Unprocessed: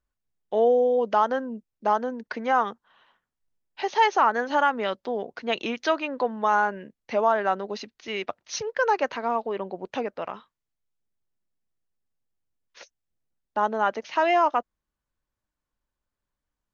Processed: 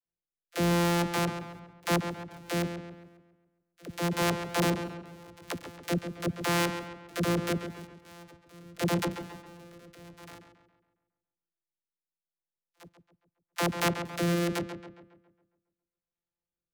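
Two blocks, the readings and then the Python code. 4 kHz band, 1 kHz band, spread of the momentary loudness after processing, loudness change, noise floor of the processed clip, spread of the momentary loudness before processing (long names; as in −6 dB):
−0.5 dB, −12.5 dB, 21 LU, −5.5 dB, below −85 dBFS, 12 LU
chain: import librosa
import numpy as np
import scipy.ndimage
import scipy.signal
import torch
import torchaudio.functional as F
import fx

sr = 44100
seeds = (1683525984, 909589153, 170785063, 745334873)

p1 = np.r_[np.sort(x[:len(x) // 256 * 256].reshape(-1, 256), axis=1).ravel(), x[len(x) // 256 * 256:]]
p2 = fx.level_steps(p1, sr, step_db=23)
p3 = fx.rotary(p2, sr, hz=0.85)
p4 = fx.low_shelf(p3, sr, hz=72.0, db=-8.5)
p5 = fx.dispersion(p4, sr, late='lows', ms=57.0, hz=360.0)
y = p5 + fx.echo_filtered(p5, sr, ms=137, feedback_pct=48, hz=3800.0, wet_db=-8.5, dry=0)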